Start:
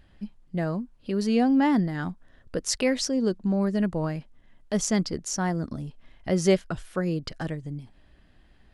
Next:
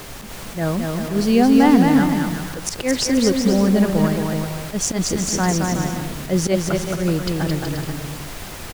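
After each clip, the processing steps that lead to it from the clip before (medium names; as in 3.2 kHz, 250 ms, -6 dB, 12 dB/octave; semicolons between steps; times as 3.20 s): added noise pink -42 dBFS; slow attack 103 ms; bouncing-ball echo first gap 220 ms, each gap 0.7×, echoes 5; trim +7 dB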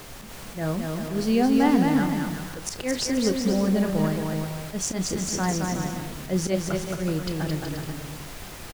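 doubling 32 ms -12 dB; trim -6.5 dB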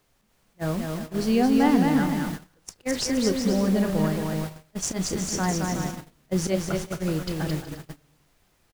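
gate -29 dBFS, range -26 dB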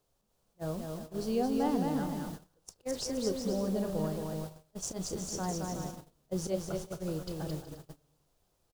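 graphic EQ 250/500/2000 Hz -4/+4/-11 dB; trim -8.5 dB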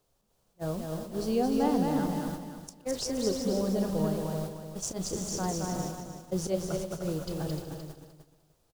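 feedback delay 302 ms, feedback 19%, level -8.5 dB; trim +3 dB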